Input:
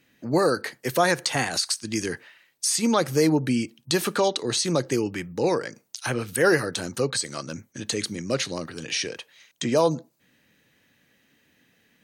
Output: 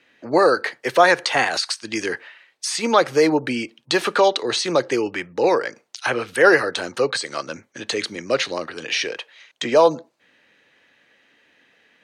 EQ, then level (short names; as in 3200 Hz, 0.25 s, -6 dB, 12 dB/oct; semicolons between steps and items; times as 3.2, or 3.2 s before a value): LPF 9800 Hz 12 dB/oct; three-band isolator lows -16 dB, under 360 Hz, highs -12 dB, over 4100 Hz; +8.0 dB